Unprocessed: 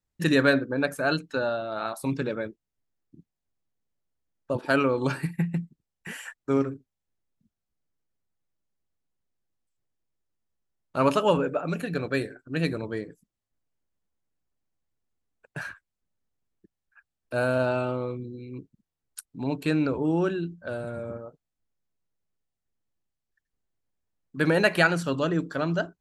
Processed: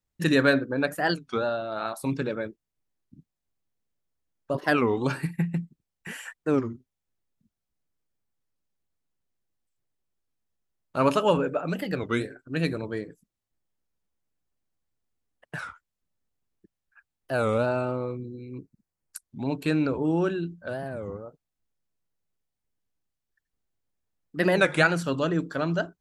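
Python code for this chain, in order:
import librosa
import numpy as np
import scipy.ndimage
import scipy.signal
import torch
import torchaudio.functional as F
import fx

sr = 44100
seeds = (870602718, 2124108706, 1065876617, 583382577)

y = fx.peak_eq(x, sr, hz=3200.0, db=-11.5, octaves=0.38, at=(17.66, 19.32))
y = fx.record_warp(y, sr, rpm=33.33, depth_cents=250.0)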